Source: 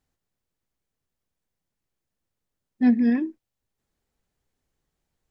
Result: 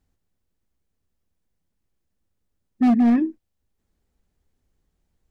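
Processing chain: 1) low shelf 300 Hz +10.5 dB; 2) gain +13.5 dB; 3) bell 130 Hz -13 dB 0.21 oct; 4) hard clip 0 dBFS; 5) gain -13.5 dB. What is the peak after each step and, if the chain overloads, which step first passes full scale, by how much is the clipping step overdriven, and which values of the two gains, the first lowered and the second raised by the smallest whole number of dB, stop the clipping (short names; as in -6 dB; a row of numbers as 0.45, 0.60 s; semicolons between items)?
-4.0, +9.5, +9.5, 0.0, -13.5 dBFS; step 2, 9.5 dB; step 2 +3.5 dB, step 5 -3.5 dB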